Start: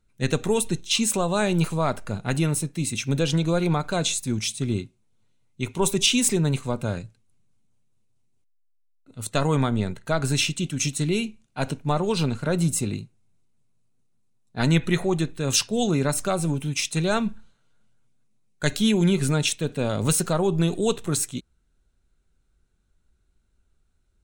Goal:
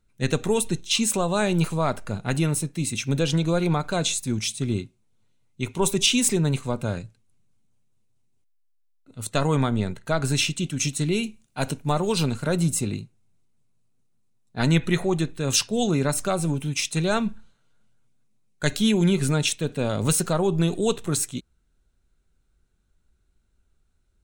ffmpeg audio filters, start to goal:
ffmpeg -i in.wav -filter_complex "[0:a]asettb=1/sr,asplit=3[link_01][link_02][link_03];[link_01]atrim=end=11.234[link_04];[link_02]atrim=start=11.23:end=12.57,asetpts=PTS-STARTPTS,afade=type=in:duration=0.004:curve=qsin,afade=type=out:start_time=1.336:duration=0.004:curve=qsin,highshelf=frequency=7500:gain=11[link_05];[link_03]atrim=start=12.566[link_06];[link_04][link_05]acrossfade=duration=0.004:curve1=hsin:curve2=qsin[link_07];[link_07][link_06]acrossfade=duration=0.004:curve1=qsin:curve2=hsin" out.wav

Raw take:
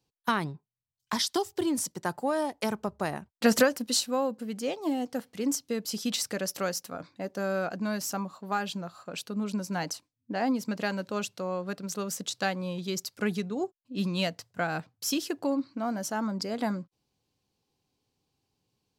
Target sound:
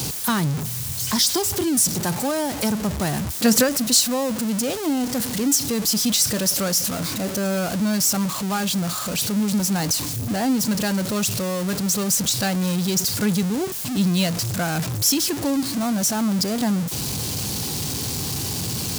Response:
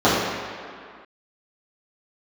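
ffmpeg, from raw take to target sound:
-af "aeval=exprs='val(0)+0.5*0.0473*sgn(val(0))':channel_layout=same,highpass=71,bass=frequency=250:gain=9,treble=frequency=4000:gain=10"

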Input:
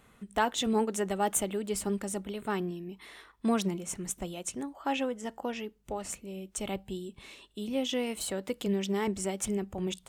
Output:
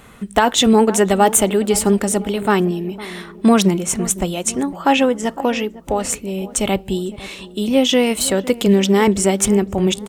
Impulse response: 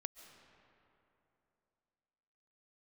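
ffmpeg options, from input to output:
-filter_complex "[0:a]asplit=2[link_01][link_02];[link_02]adelay=506,lowpass=frequency=950:poles=1,volume=-16.5dB,asplit=2[link_03][link_04];[link_04]adelay=506,lowpass=frequency=950:poles=1,volume=0.54,asplit=2[link_05][link_06];[link_06]adelay=506,lowpass=frequency=950:poles=1,volume=0.54,asplit=2[link_07][link_08];[link_08]adelay=506,lowpass=frequency=950:poles=1,volume=0.54,asplit=2[link_09][link_10];[link_10]adelay=506,lowpass=frequency=950:poles=1,volume=0.54[link_11];[link_01][link_03][link_05][link_07][link_09][link_11]amix=inputs=6:normalize=0,alimiter=level_in=17.5dB:limit=-1dB:release=50:level=0:latency=1,volume=-1dB"

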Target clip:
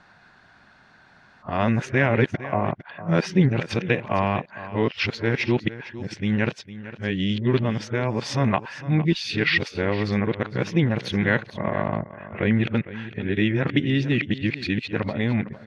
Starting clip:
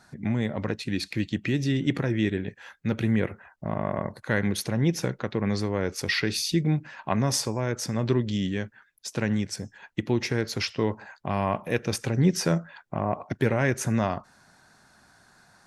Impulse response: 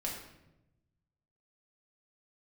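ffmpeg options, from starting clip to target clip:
-af "areverse,lowpass=frequency=2900:width_type=q:width=1.7,aecho=1:1:456:0.178,volume=3dB"

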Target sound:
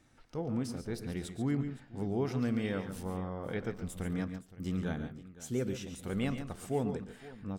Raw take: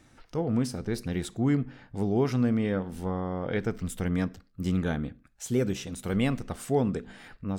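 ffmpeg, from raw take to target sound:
ffmpeg -i in.wav -filter_complex "[0:a]asettb=1/sr,asplit=3[link_01][link_02][link_03];[link_01]atrim=end=2.414[link_04];[link_02]atrim=start=2.41:end=3.03,asetpts=PTS-STARTPTS,afade=type=in:duration=0.004:curve=qsin,afade=type=out:start_time=0.616:duration=0.004:curve=qsin,highshelf=frequency=2000:gain=10[link_05];[link_03]atrim=start=3.026[link_06];[link_04][link_05]acrossfade=duration=0.004:curve1=hsin:curve2=qsin[link_07];[link_07][link_06]acrossfade=duration=0.004:curve1=qsin:curve2=hsin,aecho=1:1:119|140|517:0.188|0.299|0.133,volume=-7.5dB" out.wav

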